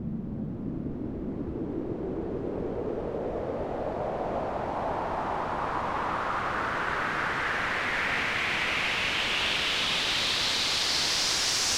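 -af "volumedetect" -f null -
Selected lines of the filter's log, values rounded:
mean_volume: -29.6 dB
max_volume: -13.0 dB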